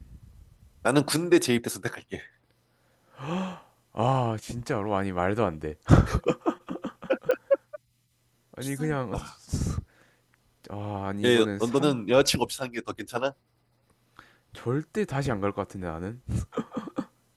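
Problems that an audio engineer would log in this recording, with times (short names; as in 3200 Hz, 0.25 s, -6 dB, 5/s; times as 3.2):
7.31 pop -14 dBFS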